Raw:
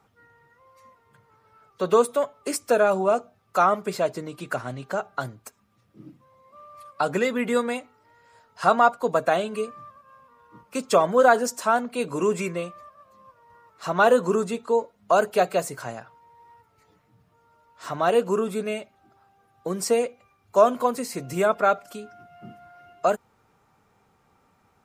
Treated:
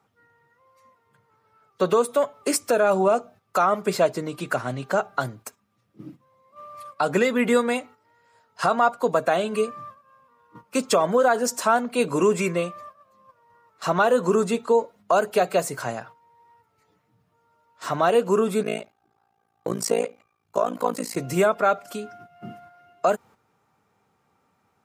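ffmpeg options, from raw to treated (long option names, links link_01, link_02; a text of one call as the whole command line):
ffmpeg -i in.wav -filter_complex "[0:a]asettb=1/sr,asplit=3[link_01][link_02][link_03];[link_01]atrim=end=18.634[link_04];[link_02]atrim=start=18.63:end=21.17,asetpts=PTS-STARTPTS,afade=type=in:duration=0.004:curve=qsin,afade=type=out:start_time=2.536:duration=0.004:curve=qsin,tremolo=f=56:d=1[link_05];[link_03]atrim=start=21.166[link_06];[link_04][link_05]acrossfade=duration=0.004:curve1=hsin:curve2=qsin[link_07];[link_07][link_06]acrossfade=duration=0.004:curve1=qsin:curve2=hsin,agate=range=-9dB:threshold=-48dB:ratio=16:detection=peak,highpass=92,alimiter=limit=-15dB:level=0:latency=1:release=227,volume=5dB" out.wav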